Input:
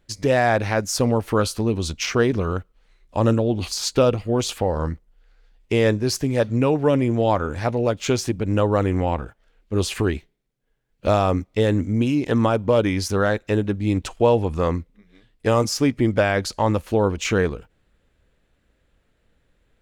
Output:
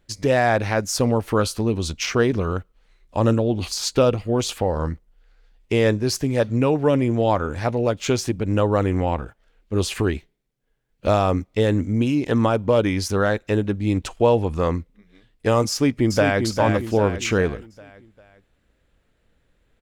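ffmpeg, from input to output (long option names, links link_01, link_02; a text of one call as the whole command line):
ffmpeg -i in.wav -filter_complex "[0:a]asplit=2[link_01][link_02];[link_02]afade=type=in:start_time=15.7:duration=0.01,afade=type=out:start_time=16.44:duration=0.01,aecho=0:1:400|800|1200|1600|2000:0.530884|0.238898|0.107504|0.0483768|0.0217696[link_03];[link_01][link_03]amix=inputs=2:normalize=0" out.wav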